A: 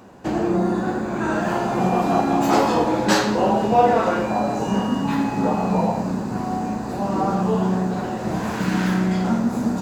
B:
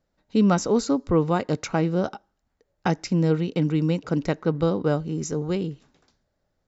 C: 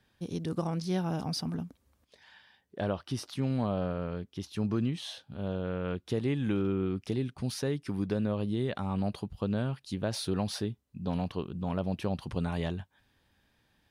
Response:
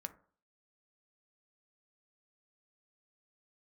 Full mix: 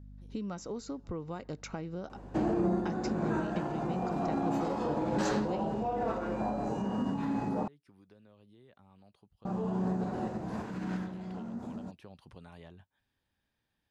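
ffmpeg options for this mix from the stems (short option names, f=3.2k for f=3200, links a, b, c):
-filter_complex "[0:a]lowpass=10k,tiltshelf=f=1.3k:g=4.5,alimiter=limit=-13dB:level=0:latency=1:release=90,adelay=2100,volume=-8dB,asplit=3[a][b][c];[a]atrim=end=7.68,asetpts=PTS-STARTPTS,afade=t=out:st=7.676:d=0.004:c=hsin[d];[b]atrim=start=7.68:end=9.45,asetpts=PTS-STARTPTS,volume=0[e];[c]atrim=start=9.45,asetpts=PTS-STARTPTS,afade=t=in:d=0.004:c=hsin[f];[d][e][f]concat=n=3:v=0:a=1[g];[1:a]aeval=exprs='val(0)+0.00891*(sin(2*PI*50*n/s)+sin(2*PI*2*50*n/s)/2+sin(2*PI*3*50*n/s)/3+sin(2*PI*4*50*n/s)/4+sin(2*PI*5*50*n/s)/5)':c=same,volume=-7dB[h];[2:a]acrossover=split=420|2100[i][j][k];[i]acompressor=threshold=-39dB:ratio=4[l];[j]acompressor=threshold=-40dB:ratio=4[m];[k]acompressor=threshold=-52dB:ratio=4[n];[l][m][n]amix=inputs=3:normalize=0,volume=-12.5dB,afade=t=in:st=10.23:d=0.73:silence=0.354813,asplit=2[o][p];[p]apad=whole_len=525503[q];[g][q]sidechaincompress=threshold=-57dB:ratio=10:attack=16:release=856[r];[h][o]amix=inputs=2:normalize=0,acompressor=threshold=-36dB:ratio=6,volume=0dB[s];[r][s]amix=inputs=2:normalize=0"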